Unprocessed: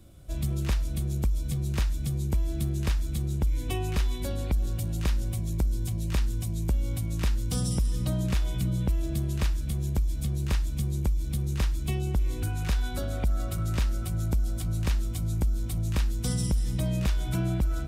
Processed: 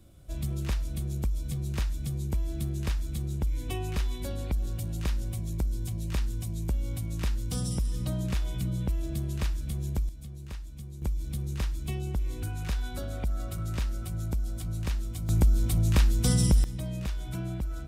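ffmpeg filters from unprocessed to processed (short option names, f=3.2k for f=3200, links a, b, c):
-af "asetnsamples=n=441:p=0,asendcmd='10.09 volume volume -13dB;11.02 volume volume -4dB;15.29 volume volume 4.5dB;16.64 volume volume -6.5dB',volume=-3dB"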